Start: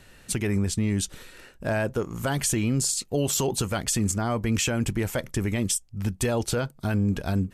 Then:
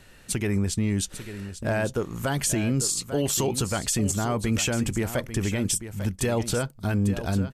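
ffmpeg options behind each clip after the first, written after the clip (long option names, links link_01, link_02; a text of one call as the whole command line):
ffmpeg -i in.wav -af "aecho=1:1:846:0.266" out.wav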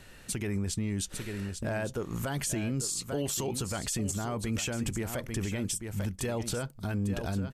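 ffmpeg -i in.wav -af "alimiter=limit=-23dB:level=0:latency=1:release=128" out.wav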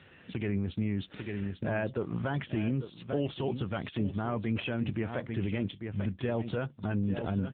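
ffmpeg -i in.wav -af "volume=2dB" -ar 8000 -c:a libopencore_amrnb -b:a 7400 out.amr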